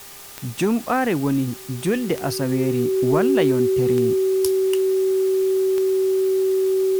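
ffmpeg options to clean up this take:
ffmpeg -i in.wav -af "adeclick=threshold=4,bandreject=frequency=402.5:width_type=h:width=4,bandreject=frequency=805:width_type=h:width=4,bandreject=frequency=1207.5:width_type=h:width=4,bandreject=frequency=380:width=30,afftdn=noise_reduction=30:noise_floor=-33" out.wav

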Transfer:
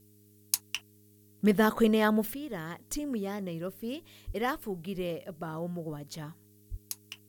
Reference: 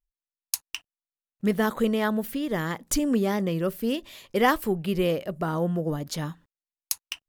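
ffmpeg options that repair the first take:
ffmpeg -i in.wav -filter_complex "[0:a]bandreject=frequency=103.4:width_type=h:width=4,bandreject=frequency=206.8:width_type=h:width=4,bandreject=frequency=310.2:width_type=h:width=4,bandreject=frequency=413.6:width_type=h:width=4,asplit=3[link_01][link_02][link_03];[link_01]afade=type=out:start_time=4.26:duration=0.02[link_04];[link_02]highpass=frequency=140:width=0.5412,highpass=frequency=140:width=1.3066,afade=type=in:start_time=4.26:duration=0.02,afade=type=out:start_time=4.38:duration=0.02[link_05];[link_03]afade=type=in:start_time=4.38:duration=0.02[link_06];[link_04][link_05][link_06]amix=inputs=3:normalize=0,asplit=3[link_07][link_08][link_09];[link_07]afade=type=out:start_time=6.7:duration=0.02[link_10];[link_08]highpass=frequency=140:width=0.5412,highpass=frequency=140:width=1.3066,afade=type=in:start_time=6.7:duration=0.02,afade=type=out:start_time=6.82:duration=0.02[link_11];[link_09]afade=type=in:start_time=6.82:duration=0.02[link_12];[link_10][link_11][link_12]amix=inputs=3:normalize=0,agate=range=-21dB:threshold=-52dB,asetnsamples=nb_out_samples=441:pad=0,asendcmd='2.34 volume volume 10dB',volume=0dB" out.wav

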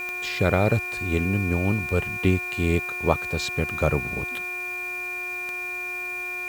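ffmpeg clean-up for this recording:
ffmpeg -i in.wav -af "adeclick=threshold=4,bandreject=frequency=360.7:width_type=h:width=4,bandreject=frequency=721.4:width_type=h:width=4,bandreject=frequency=1082.1:width_type=h:width=4,bandreject=frequency=1442.8:width_type=h:width=4,bandreject=frequency=1803.5:width_type=h:width=4,bandreject=frequency=2400:width=30,afwtdn=0.0035" out.wav

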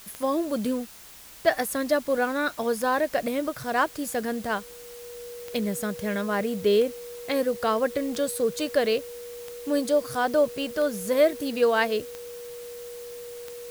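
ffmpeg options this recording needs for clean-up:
ffmpeg -i in.wav -af "adeclick=threshold=4,bandreject=frequency=480:width=30,afwtdn=0.0045" out.wav

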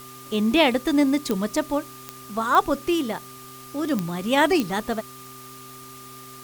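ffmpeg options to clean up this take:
ffmpeg -i in.wav -af "adeclick=threshold=4,bandreject=frequency=129:width_type=h:width=4,bandreject=frequency=258:width_type=h:width=4,bandreject=frequency=387:width_type=h:width=4,bandreject=frequency=1200:width=30,afwtdn=0.0056" out.wav

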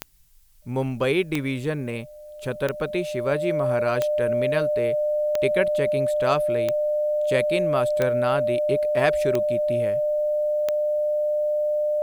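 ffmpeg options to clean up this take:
ffmpeg -i in.wav -af "adeclick=threshold=4,bandreject=frequency=600:width=30,agate=range=-21dB:threshold=-28dB" out.wav

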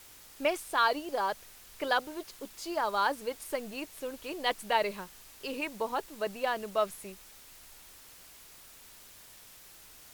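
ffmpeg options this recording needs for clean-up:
ffmpeg -i in.wav -af "afwtdn=0.0022" out.wav

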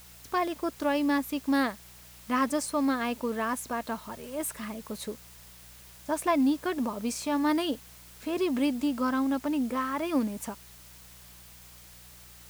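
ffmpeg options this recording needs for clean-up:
ffmpeg -i in.wav -af "adeclick=threshold=4,bandreject=frequency=60.4:width_type=h:width=4,bandreject=frequency=120.8:width_type=h:width=4,bandreject=frequency=181.2:width_type=h:width=4,afwtdn=0.0025" out.wav

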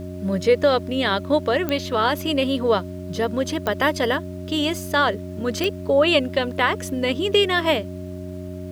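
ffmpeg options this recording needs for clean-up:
ffmpeg -i in.wav -af "adeclick=threshold=4,bandreject=frequency=91.7:width_type=h:width=4,bandreject=frequency=183.4:width_type=h:width=4,bandreject=frequency=275.1:width_type=h:width=4,bandreject=frequency=366.8:width_type=h:width=4,bandreject=frequency=620:width=30,agate=range=-21dB:threshold=-25dB" out.wav

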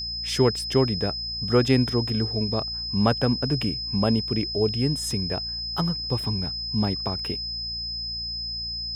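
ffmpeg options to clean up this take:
ffmpeg -i in.wav -af "bandreject=frequency=57.8:width_type=h:width=4,bandreject=frequency=115.6:width_type=h:width=4,bandreject=frequency=173.4:width_type=h:width=4,bandreject=frequency=231.2:width_type=h:width=4,bandreject=frequency=5100:width=30" out.wav

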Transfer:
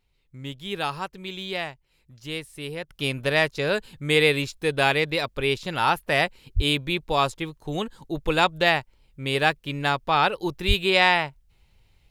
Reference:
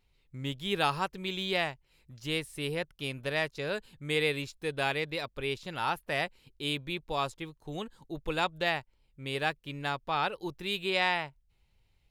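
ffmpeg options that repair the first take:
ffmpeg -i in.wav -filter_complex "[0:a]asplit=3[link_01][link_02][link_03];[link_01]afade=type=out:start_time=6.55:duration=0.02[link_04];[link_02]highpass=frequency=140:width=0.5412,highpass=frequency=140:width=1.3066,afade=type=in:start_time=6.55:duration=0.02,afade=type=out:start_time=6.67:duration=0.02[link_05];[link_03]afade=type=in:start_time=6.67:duration=0.02[link_06];[link_04][link_05][link_06]amix=inputs=3:normalize=0,asplit=3[link_07][link_08][link_09];[link_07]afade=type=out:start_time=10.67:duration=0.02[link_10];[link_08]highpass=frequency=140:width=0.5412,highpass=frequency=140:width=1.3066,afade=type=in:start_time=10.67:duration=0.02,afade=type=out:start_time=10.79:duration=0.02[link_11];[link_09]afade=type=in:start_time=10.79:duration=0.02[link_12];[link_10][link_11][link_12]amix=inputs=3:normalize=0,asetnsamples=nb_out_samples=441:pad=0,asendcmd='2.89 volume volume -9.5dB',volume=0dB" out.wav

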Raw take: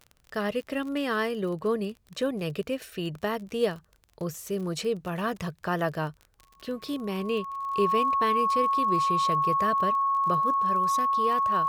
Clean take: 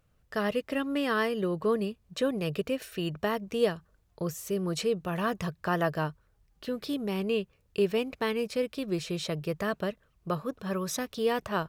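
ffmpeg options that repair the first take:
ffmpeg -i in.wav -af "adeclick=threshold=4,bandreject=frequency=1100:width=30,asetnsamples=nb_out_samples=441:pad=0,asendcmd='10.54 volume volume 3.5dB',volume=0dB" out.wav

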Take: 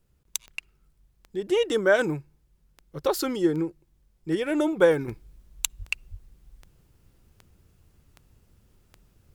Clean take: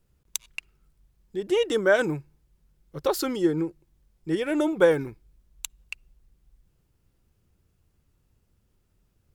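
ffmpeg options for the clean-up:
ffmpeg -i in.wav -filter_complex "[0:a]adeclick=threshold=4,asplit=3[link_01][link_02][link_03];[link_01]afade=type=out:start_time=5.78:duration=0.02[link_04];[link_02]highpass=frequency=140:width=0.5412,highpass=frequency=140:width=1.3066,afade=type=in:start_time=5.78:duration=0.02,afade=type=out:start_time=5.9:duration=0.02[link_05];[link_03]afade=type=in:start_time=5.9:duration=0.02[link_06];[link_04][link_05][link_06]amix=inputs=3:normalize=0,asplit=3[link_07][link_08][link_09];[link_07]afade=type=out:start_time=6.1:duration=0.02[link_10];[link_08]highpass=frequency=140:width=0.5412,highpass=frequency=140:width=1.3066,afade=type=in:start_time=6.1:duration=0.02,afade=type=out:start_time=6.22:duration=0.02[link_11];[link_09]afade=type=in:start_time=6.22:duration=0.02[link_12];[link_10][link_11][link_12]amix=inputs=3:normalize=0,asetnsamples=nb_out_samples=441:pad=0,asendcmd='5.08 volume volume -8dB',volume=0dB" out.wav

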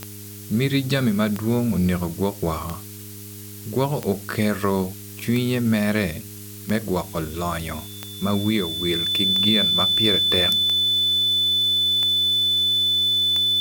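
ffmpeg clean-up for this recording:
ffmpeg -i in.wav -af "adeclick=threshold=4,bandreject=frequency=102.7:width_type=h:width=4,bandreject=frequency=205.4:width_type=h:width=4,bandreject=frequency=308.1:width_type=h:width=4,bandreject=frequency=410.8:width_type=h:width=4,bandreject=frequency=3500:width=30,afftdn=noise_reduction=30:noise_floor=-38" out.wav

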